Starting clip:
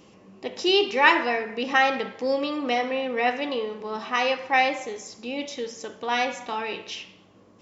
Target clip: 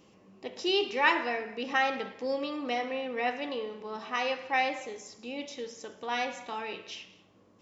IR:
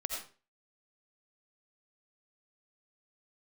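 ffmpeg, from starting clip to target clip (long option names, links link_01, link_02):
-filter_complex "[0:a]asplit=2[link_01][link_02];[1:a]atrim=start_sample=2205,adelay=108[link_03];[link_02][link_03]afir=irnorm=-1:irlink=0,volume=-20dB[link_04];[link_01][link_04]amix=inputs=2:normalize=0,volume=-7dB"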